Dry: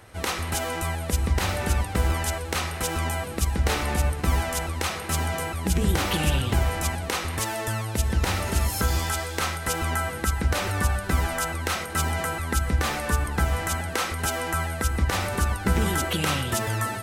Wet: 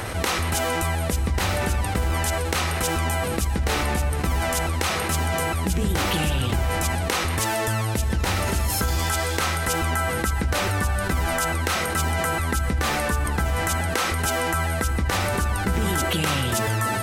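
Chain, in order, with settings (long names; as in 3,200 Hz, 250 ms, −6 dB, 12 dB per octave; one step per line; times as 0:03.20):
envelope flattener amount 70%
level −3 dB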